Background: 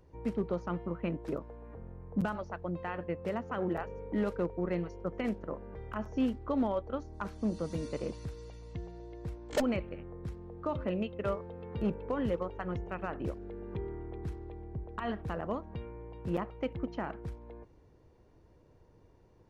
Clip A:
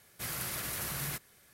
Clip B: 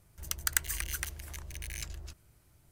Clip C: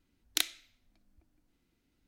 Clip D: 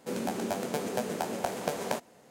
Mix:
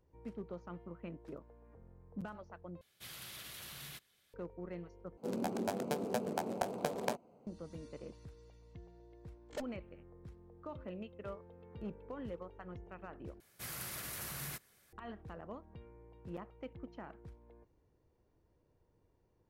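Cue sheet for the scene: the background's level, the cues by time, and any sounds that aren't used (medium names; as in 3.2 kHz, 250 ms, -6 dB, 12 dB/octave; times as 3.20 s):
background -12 dB
2.81 s: replace with A -14.5 dB + peaking EQ 3.4 kHz +11.5 dB 0.9 oct
5.17 s: replace with D -3.5 dB + local Wiener filter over 25 samples
13.40 s: replace with A -6.5 dB
not used: B, C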